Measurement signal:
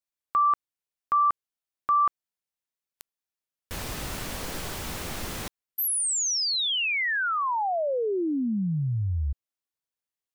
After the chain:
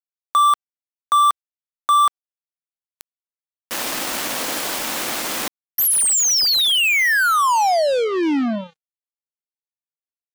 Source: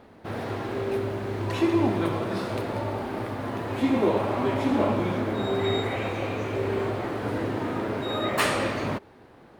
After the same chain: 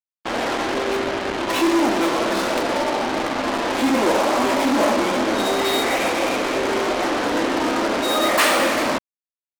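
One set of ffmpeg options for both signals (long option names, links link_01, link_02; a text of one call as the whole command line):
ffmpeg -i in.wav -filter_complex "[0:a]asplit=2[link_01][link_02];[link_02]adelay=110,highpass=300,lowpass=3400,asoftclip=type=hard:threshold=-19.5dB,volume=-22dB[link_03];[link_01][link_03]amix=inputs=2:normalize=0,anlmdn=0.398,acontrast=39,asoftclip=type=tanh:threshold=-18.5dB,highpass=frequency=260:width=0.5412,highpass=frequency=260:width=1.3066,equalizer=frequency=410:width_type=o:width=0.32:gain=-8,aeval=exprs='val(0)+0.00178*sin(2*PI*3100*n/s)':channel_layout=same,acrusher=bits=4:mix=0:aa=0.5,volume=7dB" out.wav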